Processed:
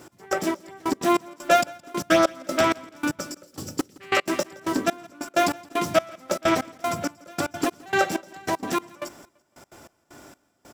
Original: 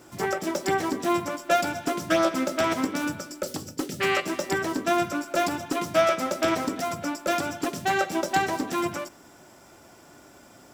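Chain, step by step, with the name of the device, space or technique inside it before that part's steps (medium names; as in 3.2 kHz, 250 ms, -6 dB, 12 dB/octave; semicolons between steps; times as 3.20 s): trance gate with a delay (trance gate "x...xxx....x.x" 193 bpm -24 dB; feedback delay 168 ms, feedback 40%, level -23.5 dB); trim +4 dB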